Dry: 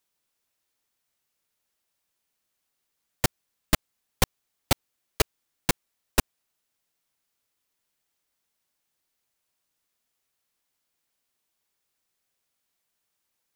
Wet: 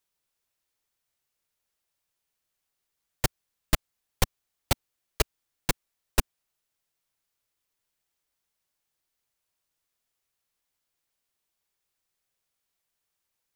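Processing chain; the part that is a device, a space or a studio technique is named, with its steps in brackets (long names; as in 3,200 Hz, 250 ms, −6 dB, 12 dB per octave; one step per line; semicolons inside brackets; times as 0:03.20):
low shelf boost with a cut just above (low-shelf EQ 89 Hz +5.5 dB; parametric band 240 Hz −4.5 dB 0.5 octaves)
level −3 dB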